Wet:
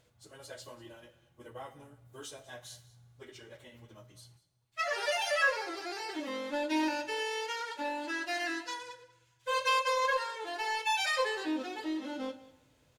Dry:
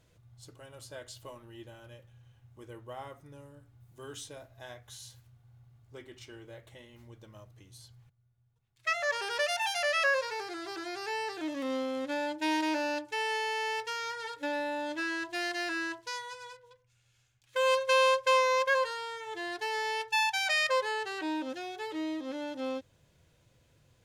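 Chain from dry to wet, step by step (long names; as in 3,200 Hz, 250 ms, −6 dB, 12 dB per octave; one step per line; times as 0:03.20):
low-shelf EQ 110 Hz −9 dB
time stretch by phase vocoder 0.54×
in parallel at −9.5 dB: gain into a clipping stage and back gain 35.5 dB
on the sum: single-tap delay 192 ms −19 dB
coupled-rooms reverb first 0.36 s, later 1.7 s, from −20 dB, DRR 7 dB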